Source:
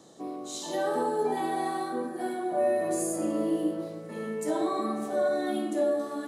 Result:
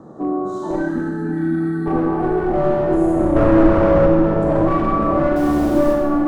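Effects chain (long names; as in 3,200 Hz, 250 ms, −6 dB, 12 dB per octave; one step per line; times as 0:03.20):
0:03.36–0:04.06: mid-hump overdrive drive 35 dB, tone 1,500 Hz, clips at −16.5 dBFS
high shelf with overshoot 1,900 Hz −11.5 dB, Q 3
on a send: echo with a time of its own for lows and highs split 1,100 Hz, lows 554 ms, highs 153 ms, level −7 dB
0:00.76–0:01.86: on the sum: gain on a spectral selection 330–1,300 Hz −24 dB
in parallel at −2 dB: downward compressor, threshold −32 dBFS, peak gain reduction 12 dB
0:05.36–0:05.93: on the sum: bit-depth reduction 6 bits, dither triangular
asymmetric clip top −25.5 dBFS
spectral tilt −3.5 dB per octave
four-comb reverb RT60 1.1 s, combs from 27 ms, DRR 1 dB
level +2.5 dB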